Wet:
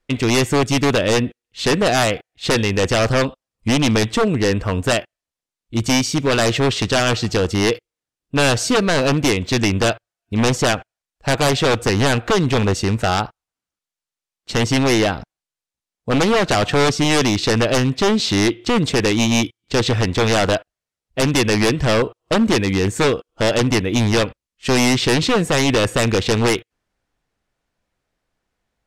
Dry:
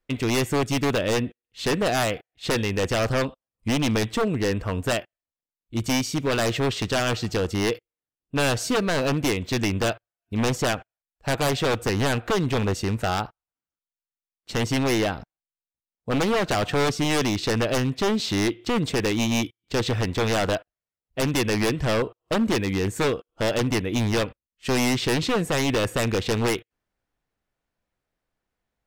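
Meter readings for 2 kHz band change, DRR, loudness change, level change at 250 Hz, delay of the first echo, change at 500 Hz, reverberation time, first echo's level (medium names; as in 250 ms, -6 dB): +7.0 dB, no reverb, +6.5 dB, +6.5 dB, no echo, +6.5 dB, no reverb, no echo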